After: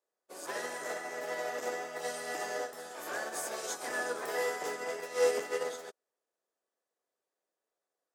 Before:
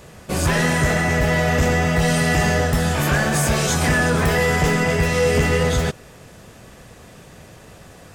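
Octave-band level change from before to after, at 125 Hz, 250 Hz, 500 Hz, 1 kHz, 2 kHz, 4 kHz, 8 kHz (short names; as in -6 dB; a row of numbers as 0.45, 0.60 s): under -40 dB, -28.5 dB, -13.0 dB, -15.5 dB, -18.0 dB, -18.0 dB, -15.5 dB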